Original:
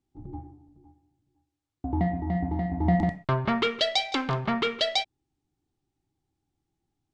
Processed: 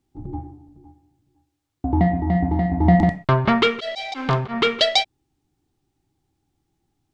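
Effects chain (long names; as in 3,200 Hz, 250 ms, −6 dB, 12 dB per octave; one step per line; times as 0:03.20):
0:03.60–0:04.63: volume swells 148 ms
level +8 dB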